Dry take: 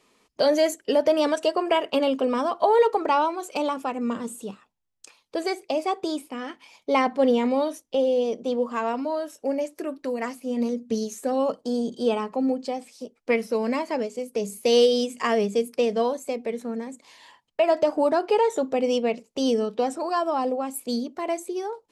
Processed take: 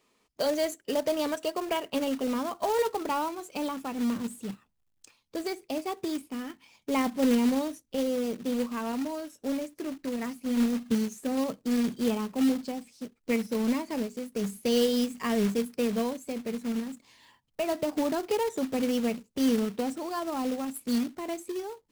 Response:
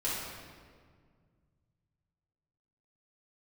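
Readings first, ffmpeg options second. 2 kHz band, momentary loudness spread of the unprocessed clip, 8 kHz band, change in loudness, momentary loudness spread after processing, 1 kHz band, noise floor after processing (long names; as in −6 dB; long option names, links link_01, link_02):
−5.5 dB, 11 LU, −1.5 dB, −5.0 dB, 10 LU, −9.0 dB, −73 dBFS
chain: -af "asubboost=boost=5:cutoff=240,acrusher=bits=3:mode=log:mix=0:aa=0.000001,volume=-7dB"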